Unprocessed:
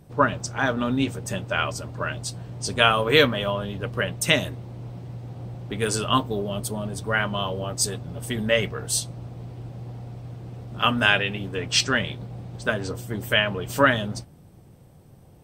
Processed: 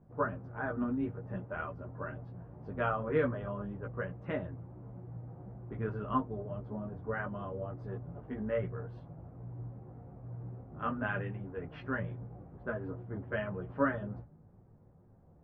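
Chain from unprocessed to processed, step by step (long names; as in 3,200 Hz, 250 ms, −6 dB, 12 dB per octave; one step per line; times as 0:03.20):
low-pass filter 1,500 Hz 24 dB per octave
dynamic equaliser 860 Hz, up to −4 dB, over −35 dBFS, Q 1.1
multi-voice chorus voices 6, 0.4 Hz, delay 15 ms, depth 4.5 ms
level −6.5 dB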